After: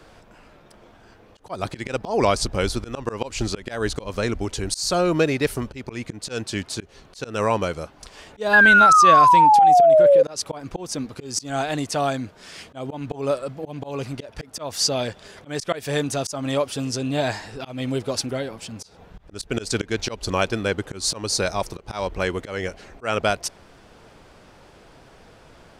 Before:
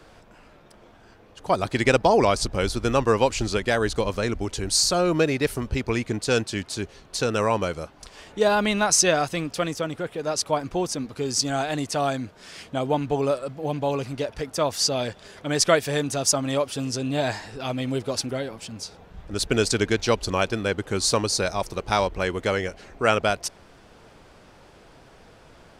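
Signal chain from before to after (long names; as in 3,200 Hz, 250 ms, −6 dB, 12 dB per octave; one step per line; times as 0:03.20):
volume swells 189 ms
sound drawn into the spectrogram fall, 0:08.53–0:10.23, 520–1,700 Hz −14 dBFS
level +1.5 dB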